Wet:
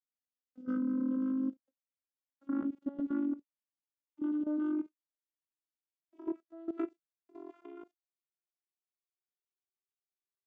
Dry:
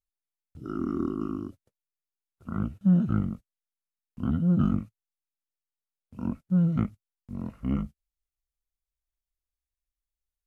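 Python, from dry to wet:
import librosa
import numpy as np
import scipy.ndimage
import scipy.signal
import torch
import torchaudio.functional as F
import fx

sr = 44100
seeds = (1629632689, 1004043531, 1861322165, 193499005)

y = fx.vocoder_glide(x, sr, note=59, semitones=8)
y = fx.level_steps(y, sr, step_db=16)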